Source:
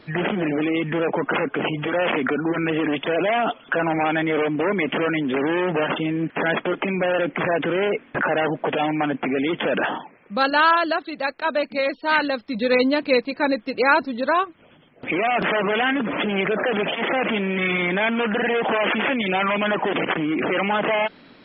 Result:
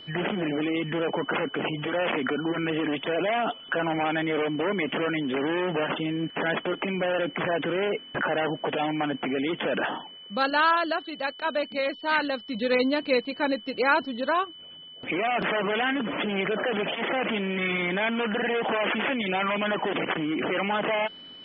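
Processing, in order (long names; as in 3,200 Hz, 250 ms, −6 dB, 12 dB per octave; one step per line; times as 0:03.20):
steady tone 3,000 Hz −38 dBFS
level −5 dB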